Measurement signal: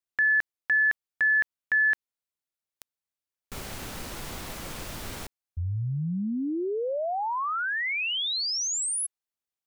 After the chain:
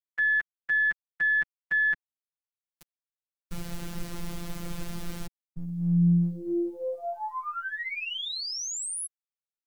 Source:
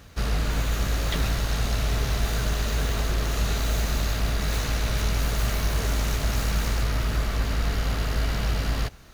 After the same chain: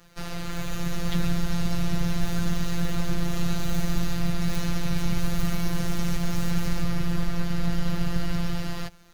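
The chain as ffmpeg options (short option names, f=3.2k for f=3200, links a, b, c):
-filter_complex "[0:a]acrossover=split=260[a][b];[a]dynaudnorm=f=120:g=13:m=12dB[c];[c][b]amix=inputs=2:normalize=0,aeval=exprs='0.668*(cos(1*acos(clip(val(0)/0.668,-1,1)))-cos(1*PI/2))+0.0422*(cos(4*acos(clip(val(0)/0.668,-1,1)))-cos(4*PI/2))+0.015*(cos(6*acos(clip(val(0)/0.668,-1,1)))-cos(6*PI/2))+0.00473*(cos(8*acos(clip(val(0)/0.668,-1,1)))-cos(8*PI/2))':c=same,acrusher=bits=10:mix=0:aa=0.000001,afftfilt=real='hypot(re,im)*cos(PI*b)':imag='0':win_size=1024:overlap=0.75,volume=-1.5dB"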